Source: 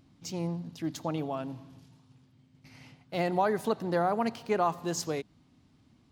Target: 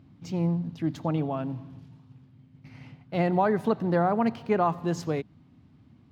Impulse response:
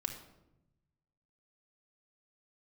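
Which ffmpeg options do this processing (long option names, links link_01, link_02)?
-af "highpass=70,bass=frequency=250:gain=7,treble=frequency=4000:gain=-13,volume=2.5dB"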